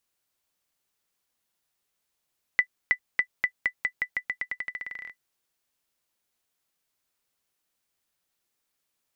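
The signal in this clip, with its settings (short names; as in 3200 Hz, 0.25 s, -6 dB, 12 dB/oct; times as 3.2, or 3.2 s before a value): bouncing ball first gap 0.32 s, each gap 0.88, 1990 Hz, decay 78 ms -9.5 dBFS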